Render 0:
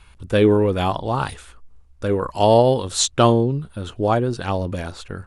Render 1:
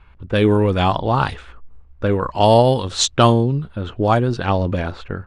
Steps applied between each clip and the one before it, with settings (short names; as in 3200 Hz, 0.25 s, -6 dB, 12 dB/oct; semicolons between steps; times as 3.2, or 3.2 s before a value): low-pass opened by the level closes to 2000 Hz, open at -10.5 dBFS; dynamic EQ 420 Hz, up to -5 dB, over -24 dBFS, Q 1; AGC gain up to 5 dB; gain +1 dB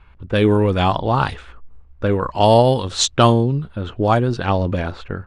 nothing audible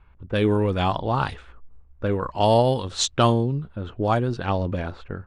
mismatched tape noise reduction decoder only; gain -5.5 dB